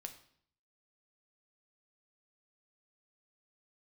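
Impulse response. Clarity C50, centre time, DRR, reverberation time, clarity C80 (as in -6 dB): 11.5 dB, 10 ms, 5.5 dB, 0.60 s, 15.0 dB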